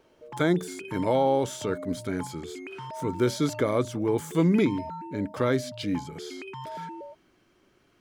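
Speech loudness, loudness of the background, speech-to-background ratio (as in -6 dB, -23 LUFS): -27.5 LUFS, -40.0 LUFS, 12.5 dB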